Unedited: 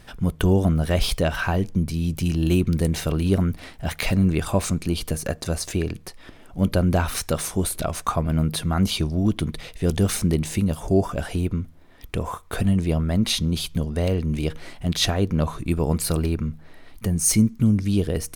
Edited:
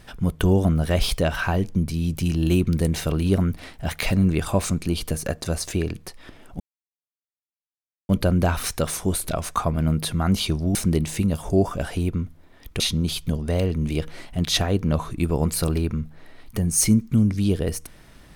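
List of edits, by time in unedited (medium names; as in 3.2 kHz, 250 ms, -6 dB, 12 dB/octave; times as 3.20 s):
6.60 s: insert silence 1.49 s
9.26–10.13 s: delete
12.18–13.28 s: delete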